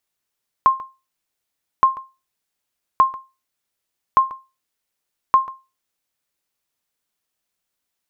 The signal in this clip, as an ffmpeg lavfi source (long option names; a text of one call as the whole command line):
ffmpeg -f lavfi -i "aevalsrc='0.562*(sin(2*PI*1060*mod(t,1.17))*exp(-6.91*mod(t,1.17)/0.27)+0.119*sin(2*PI*1060*max(mod(t,1.17)-0.14,0))*exp(-6.91*max(mod(t,1.17)-0.14,0)/0.27))':duration=5.85:sample_rate=44100" out.wav